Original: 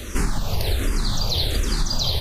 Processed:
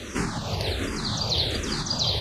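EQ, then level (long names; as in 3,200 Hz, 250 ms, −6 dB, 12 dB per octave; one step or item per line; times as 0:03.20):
band-pass filter 100–6,800 Hz
0.0 dB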